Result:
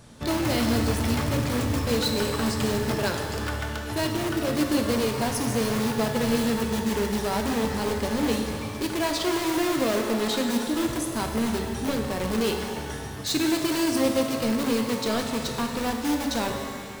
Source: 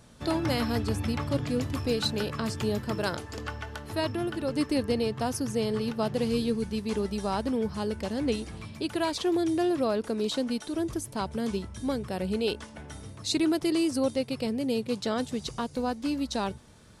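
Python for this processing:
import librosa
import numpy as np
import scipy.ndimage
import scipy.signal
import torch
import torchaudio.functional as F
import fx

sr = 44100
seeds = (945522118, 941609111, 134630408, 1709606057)

p1 = (np.mod(10.0 ** (25.5 / 20.0) * x + 1.0, 2.0) - 1.0) / 10.0 ** (25.5 / 20.0)
p2 = x + (p1 * librosa.db_to_amplitude(-4.0))
y = fx.rev_shimmer(p2, sr, seeds[0], rt60_s=2.1, semitones=12, shimmer_db=-8, drr_db=3.0)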